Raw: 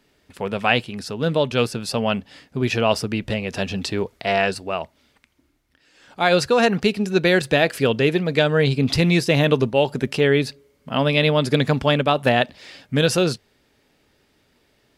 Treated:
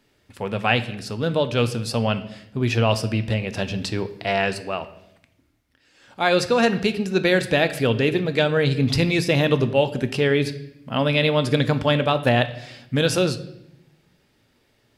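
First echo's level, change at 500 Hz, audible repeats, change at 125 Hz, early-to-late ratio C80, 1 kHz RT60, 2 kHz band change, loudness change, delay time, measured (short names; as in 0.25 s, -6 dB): none, -1.5 dB, none, 0.0 dB, 16.5 dB, 0.75 s, -1.5 dB, -1.5 dB, none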